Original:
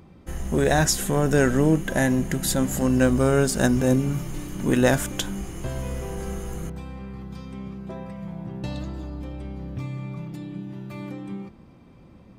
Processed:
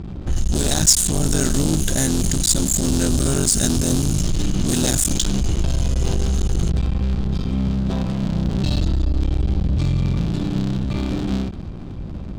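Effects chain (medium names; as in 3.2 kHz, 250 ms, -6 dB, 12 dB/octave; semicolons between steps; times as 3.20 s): cycle switcher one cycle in 3, muted; level-controlled noise filter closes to 1.6 kHz, open at -20 dBFS; graphic EQ 125/250/500/1000/2000/4000/8000 Hz -4/-3/-9/-9/-12/+6/+10 dB; in parallel at +3 dB: compressor with a negative ratio -38 dBFS, ratio -1; on the sum: power-law waveshaper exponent 0.7; bass shelf 120 Hz +4.5 dB; trim -1 dB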